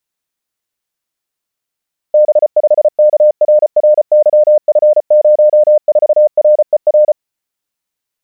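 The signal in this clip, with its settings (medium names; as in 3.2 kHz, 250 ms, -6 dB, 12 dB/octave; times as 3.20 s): Morse "B5KRRYF04RER" 34 wpm 604 Hz -3.5 dBFS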